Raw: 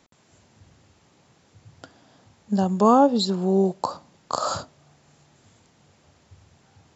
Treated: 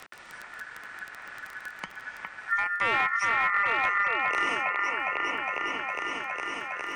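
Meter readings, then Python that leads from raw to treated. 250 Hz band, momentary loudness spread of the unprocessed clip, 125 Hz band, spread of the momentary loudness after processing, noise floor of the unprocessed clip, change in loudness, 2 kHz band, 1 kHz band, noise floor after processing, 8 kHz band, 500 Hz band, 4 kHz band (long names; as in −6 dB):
−21.5 dB, 15 LU, −22.5 dB, 17 LU, −61 dBFS, −4.5 dB, +23.0 dB, −1.5 dB, −47 dBFS, can't be measured, −14.0 dB, −3.5 dB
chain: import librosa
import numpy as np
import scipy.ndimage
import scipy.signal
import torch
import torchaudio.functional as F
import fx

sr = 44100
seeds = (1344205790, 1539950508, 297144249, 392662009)

p1 = fx.high_shelf(x, sr, hz=2900.0, db=-10.0)
p2 = p1 + fx.echo_opening(p1, sr, ms=410, hz=750, octaves=1, feedback_pct=70, wet_db=0, dry=0)
p3 = fx.dmg_crackle(p2, sr, seeds[0], per_s=22.0, level_db=-39.0)
p4 = np.clip(p3, -10.0 ** (-12.5 / 20.0), 10.0 ** (-12.5 / 20.0))
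p5 = p4 * np.sin(2.0 * np.pi * 1600.0 * np.arange(len(p4)) / sr)
p6 = fx.band_squash(p5, sr, depth_pct=70)
y = p6 * librosa.db_to_amplitude(-4.0)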